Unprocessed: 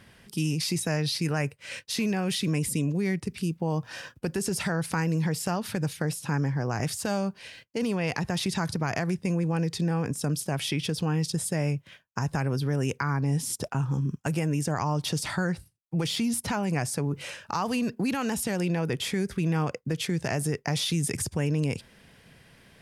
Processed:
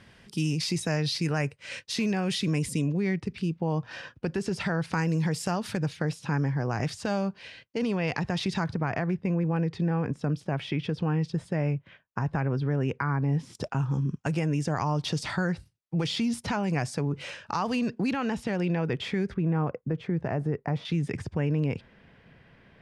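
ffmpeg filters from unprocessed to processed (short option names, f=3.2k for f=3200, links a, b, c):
-af "asetnsamples=n=441:p=0,asendcmd='2.88 lowpass f 4100;4.93 lowpass f 8300;5.77 lowpass f 4700;8.64 lowpass f 2300;13.55 lowpass f 5500;18.13 lowpass f 3200;19.34 lowpass f 1300;20.85 lowpass f 2400',lowpass=7.3k"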